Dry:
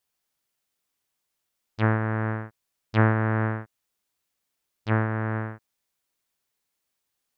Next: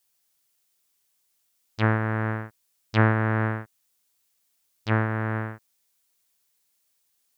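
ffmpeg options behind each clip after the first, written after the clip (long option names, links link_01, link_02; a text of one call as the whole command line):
ffmpeg -i in.wav -af "highshelf=frequency=3500:gain=10.5" out.wav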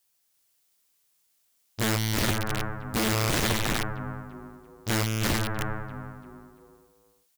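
ffmpeg -i in.wav -filter_complex "[0:a]asplit=6[link_01][link_02][link_03][link_04][link_05][link_06];[link_02]adelay=339,afreqshift=-120,volume=-3.5dB[link_07];[link_03]adelay=678,afreqshift=-240,volume=-11.9dB[link_08];[link_04]adelay=1017,afreqshift=-360,volume=-20.3dB[link_09];[link_05]adelay=1356,afreqshift=-480,volume=-28.7dB[link_10];[link_06]adelay=1695,afreqshift=-600,volume=-37.1dB[link_11];[link_01][link_07][link_08][link_09][link_10][link_11]amix=inputs=6:normalize=0,aeval=exprs='(mod(10.6*val(0)+1,2)-1)/10.6':channel_layout=same" out.wav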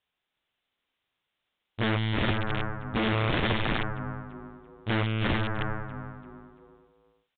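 ffmpeg -i in.wav -af "aresample=8000,aresample=44100" out.wav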